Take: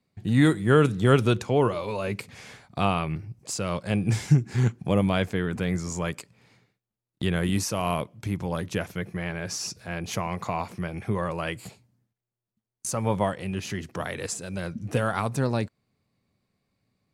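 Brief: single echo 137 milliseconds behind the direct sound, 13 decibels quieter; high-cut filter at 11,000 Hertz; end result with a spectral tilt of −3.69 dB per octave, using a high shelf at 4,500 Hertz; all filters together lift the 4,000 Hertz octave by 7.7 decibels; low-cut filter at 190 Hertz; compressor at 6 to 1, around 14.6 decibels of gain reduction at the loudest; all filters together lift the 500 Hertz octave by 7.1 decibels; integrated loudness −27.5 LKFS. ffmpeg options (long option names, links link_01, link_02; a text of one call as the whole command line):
ffmpeg -i in.wav -af "highpass=190,lowpass=11000,equalizer=frequency=500:width_type=o:gain=8.5,equalizer=frequency=4000:width_type=o:gain=8.5,highshelf=frequency=4500:gain=3.5,acompressor=threshold=-25dB:ratio=6,aecho=1:1:137:0.224,volume=3dB" out.wav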